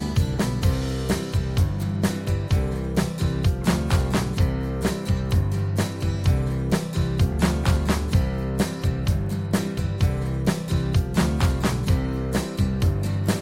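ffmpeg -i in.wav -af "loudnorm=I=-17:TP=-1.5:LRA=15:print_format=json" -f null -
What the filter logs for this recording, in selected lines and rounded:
"input_i" : "-23.9",
"input_tp" : "-7.6",
"input_lra" : "0.8",
"input_thresh" : "-33.9",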